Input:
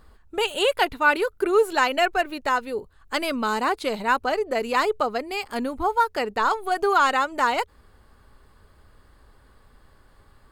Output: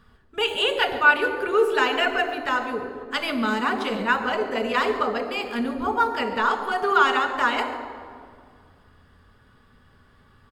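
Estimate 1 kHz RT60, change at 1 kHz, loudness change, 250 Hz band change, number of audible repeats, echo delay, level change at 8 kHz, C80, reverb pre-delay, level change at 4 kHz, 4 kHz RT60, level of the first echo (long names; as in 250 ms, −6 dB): 2.0 s, −0.5 dB, +0.5 dB, +2.0 dB, 1, 140 ms, −6.0 dB, 9.0 dB, 3 ms, +2.5 dB, 1.4 s, −16.5 dB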